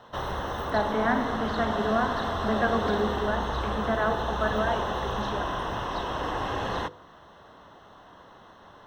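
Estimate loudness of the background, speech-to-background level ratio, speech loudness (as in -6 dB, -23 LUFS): -31.0 LUFS, 1.5 dB, -29.5 LUFS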